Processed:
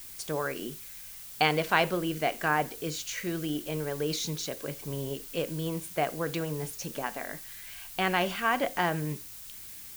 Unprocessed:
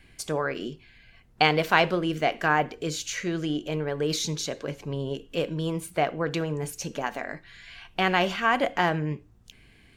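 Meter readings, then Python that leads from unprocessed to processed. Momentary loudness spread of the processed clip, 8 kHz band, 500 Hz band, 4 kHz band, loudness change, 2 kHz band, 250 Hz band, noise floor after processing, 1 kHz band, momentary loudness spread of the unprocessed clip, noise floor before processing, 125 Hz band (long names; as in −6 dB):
14 LU, −1.5 dB, −4.0 dB, −4.0 dB, −4.0 dB, −4.0 dB, −4.0 dB, −45 dBFS, −4.0 dB, 13 LU, −57 dBFS, −4.0 dB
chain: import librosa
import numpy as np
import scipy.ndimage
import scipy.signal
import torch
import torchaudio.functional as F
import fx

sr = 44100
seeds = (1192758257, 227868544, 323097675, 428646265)

y = fx.dmg_noise_colour(x, sr, seeds[0], colour='blue', level_db=-41.0)
y = F.gain(torch.from_numpy(y), -4.0).numpy()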